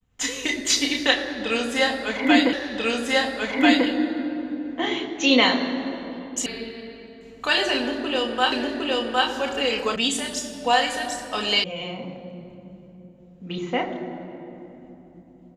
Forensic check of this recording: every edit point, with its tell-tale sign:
0:02.53: the same again, the last 1.34 s
0:06.46: cut off before it has died away
0:08.52: the same again, the last 0.76 s
0:09.96: cut off before it has died away
0:11.64: cut off before it has died away

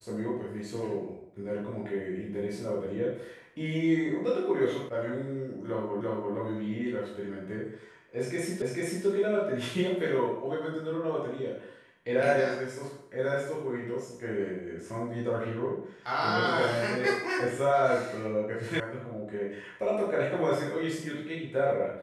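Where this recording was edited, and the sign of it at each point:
0:04.89: cut off before it has died away
0:06.01: the same again, the last 0.34 s
0:08.62: the same again, the last 0.44 s
0:18.80: cut off before it has died away

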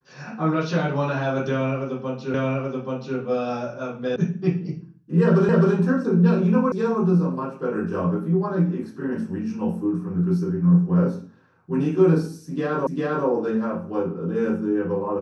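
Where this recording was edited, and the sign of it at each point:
0:02.34: the same again, the last 0.83 s
0:04.16: cut off before it has died away
0:05.49: the same again, the last 0.26 s
0:06.72: cut off before it has died away
0:12.87: the same again, the last 0.4 s

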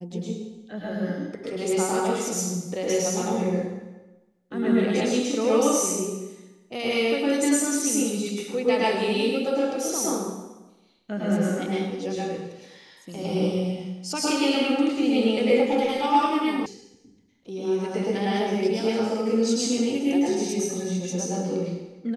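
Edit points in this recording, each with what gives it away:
0:16.66: cut off before it has died away

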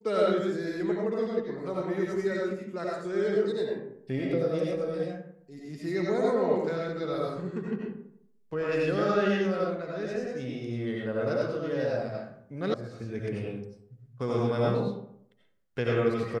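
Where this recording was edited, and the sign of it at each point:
0:12.74: cut off before it has died away

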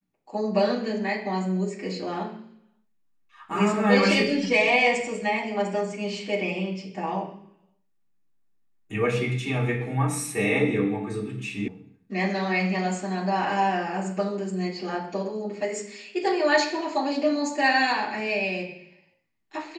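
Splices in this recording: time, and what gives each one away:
0:11.68: cut off before it has died away

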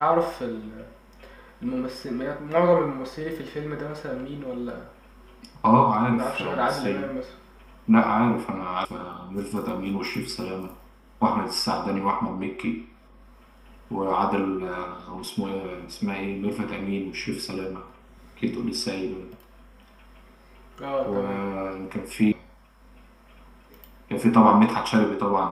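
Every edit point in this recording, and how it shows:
0:08.85: cut off before it has died away
0:22.32: cut off before it has died away

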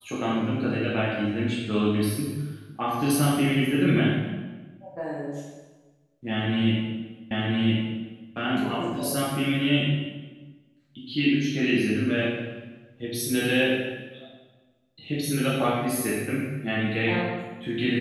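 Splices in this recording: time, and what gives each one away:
0:07.31: the same again, the last 1.01 s

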